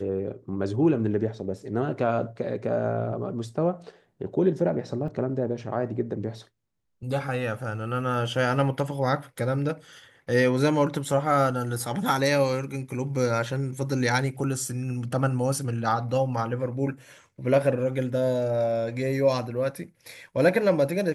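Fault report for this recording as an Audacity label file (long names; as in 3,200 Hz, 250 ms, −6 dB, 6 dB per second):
5.080000	5.080000	drop-out 2.4 ms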